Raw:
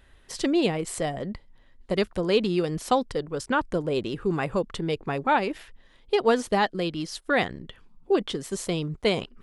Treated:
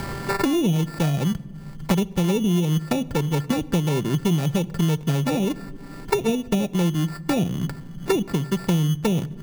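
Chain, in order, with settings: sample sorter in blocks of 32 samples; notch 1300 Hz, Q 10; treble ducked by the level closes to 560 Hz, closed at -19.5 dBFS; bell 150 Hz +14 dB 0.95 oct; treble ducked by the level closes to 1200 Hz, closed at -24.5 dBFS; sample-and-hold 14×; on a send at -21 dB: reverb RT60 0.90 s, pre-delay 23 ms; on the sum: three-band squash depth 100%

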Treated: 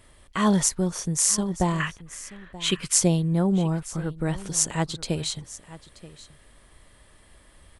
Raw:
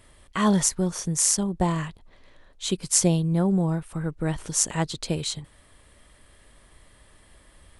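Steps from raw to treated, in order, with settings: 1.8–2.93 band shelf 1900 Hz +11.5 dB; echo 0.93 s -18 dB

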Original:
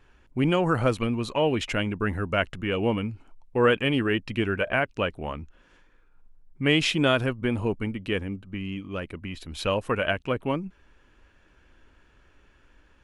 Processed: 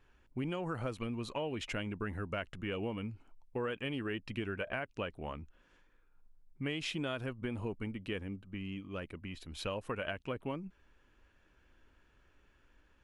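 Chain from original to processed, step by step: compressor, threshold -25 dBFS, peak gain reduction 9.5 dB; gain -8.5 dB

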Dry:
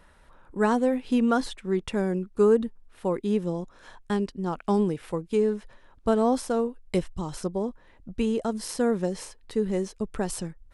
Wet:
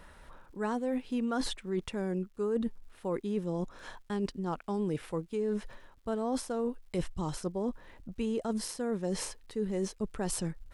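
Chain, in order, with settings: reverse; compressor 6:1, threshold -33 dBFS, peak gain reduction 16 dB; reverse; crackle 290/s -64 dBFS; gain +3 dB

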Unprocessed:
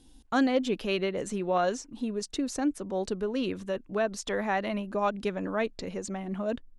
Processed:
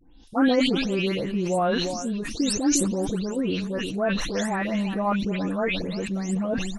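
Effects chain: spectral delay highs late, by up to 0.275 s; on a send: echo 0.355 s -16 dB; on the sum: dynamic EQ 170 Hz, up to +6 dB, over -45 dBFS, Q 1.1; sustainer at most 32 dB/s; gain +2.5 dB

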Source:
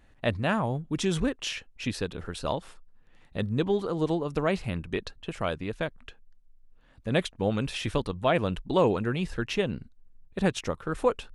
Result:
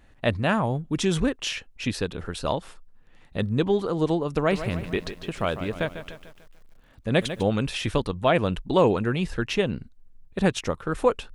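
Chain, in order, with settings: 4.34–7.43 lo-fi delay 0.148 s, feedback 55%, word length 9-bit, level -11 dB; gain +3.5 dB

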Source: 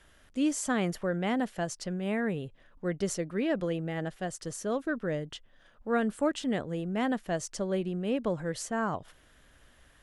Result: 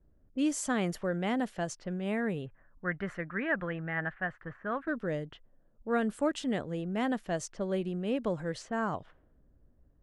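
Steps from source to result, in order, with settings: low-pass opened by the level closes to 300 Hz, open at -28 dBFS; 2.46–4.88 EQ curve 130 Hz 0 dB, 440 Hz -7 dB, 1700 Hz +13 dB, 5500 Hz -25 dB; gain -1.5 dB

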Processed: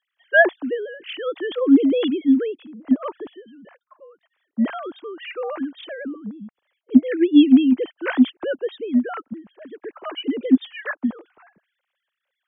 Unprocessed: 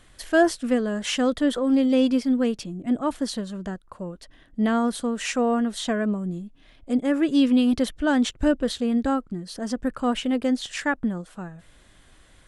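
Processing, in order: sine-wave speech; three-band expander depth 40%; gain +1 dB

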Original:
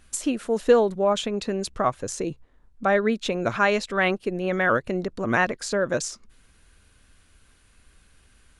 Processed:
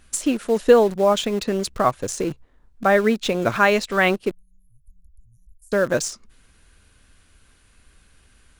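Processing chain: 4.31–5.72 inverse Chebyshev band-stop 320–2900 Hz, stop band 80 dB; in parallel at -11.5 dB: bit-crush 5-bit; on the sum: gain +2 dB

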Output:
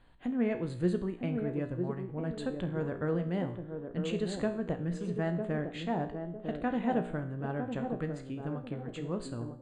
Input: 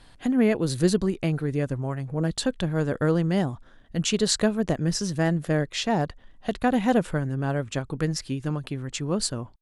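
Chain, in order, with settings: running mean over 8 samples; resonator 59 Hz, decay 0.58 s, harmonics all, mix 70%; narrowing echo 0.954 s, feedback 40%, band-pass 370 Hz, level -4.5 dB; gain -2 dB

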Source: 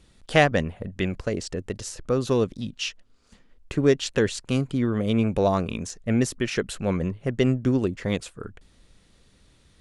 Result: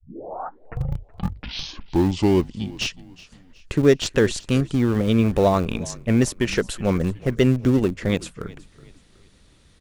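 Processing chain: tape start at the beginning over 2.87 s; in parallel at -10 dB: Schmitt trigger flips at -22.5 dBFS; on the sum: frequency-shifting echo 0.37 s, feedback 41%, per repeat -36 Hz, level -20.5 dB; gain +3 dB

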